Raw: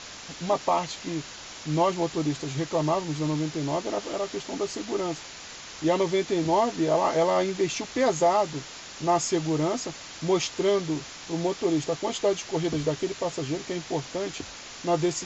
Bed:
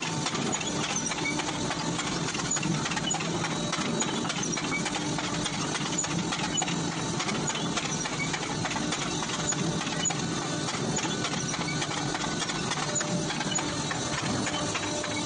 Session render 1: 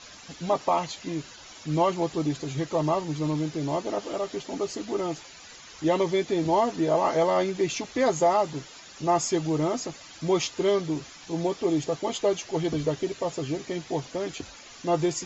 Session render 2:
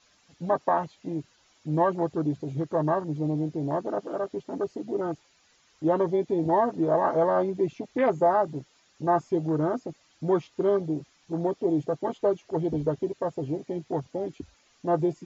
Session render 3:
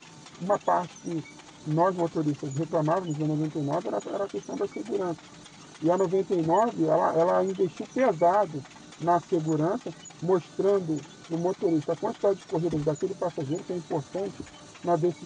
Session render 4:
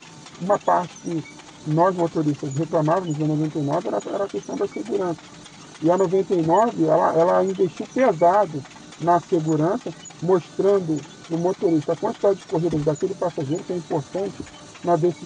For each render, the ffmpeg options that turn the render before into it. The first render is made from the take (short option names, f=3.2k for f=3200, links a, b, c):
-af "afftdn=nr=10:nf=-42"
-filter_complex "[0:a]afwtdn=0.0282,acrossover=split=3600[a][b];[b]acompressor=threshold=-60dB:ratio=4:attack=1:release=60[c];[a][c]amix=inputs=2:normalize=0"
-filter_complex "[1:a]volume=-18dB[a];[0:a][a]amix=inputs=2:normalize=0"
-af "volume=5.5dB"